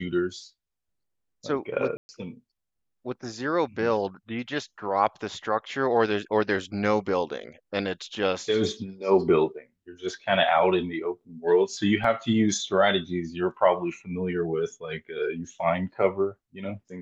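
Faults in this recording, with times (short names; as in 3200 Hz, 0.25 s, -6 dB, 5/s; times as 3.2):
1.97–2.09 gap 0.12 s
12.04 gap 3.7 ms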